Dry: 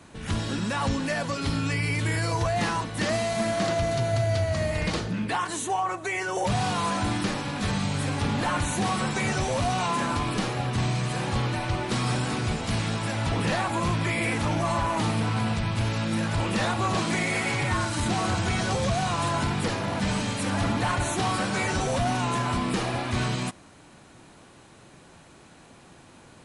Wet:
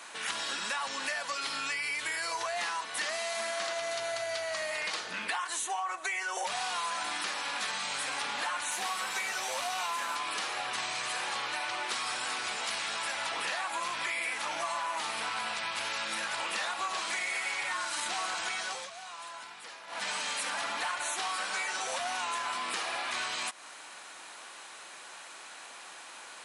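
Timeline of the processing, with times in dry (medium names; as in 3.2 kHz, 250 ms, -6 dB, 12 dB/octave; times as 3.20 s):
8.71–10.16 s: CVSD coder 64 kbps
18.42–20.34 s: dip -22 dB, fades 0.47 s
whole clip: high-pass 1 kHz 12 dB/octave; compression, threshold -41 dBFS; trim +9 dB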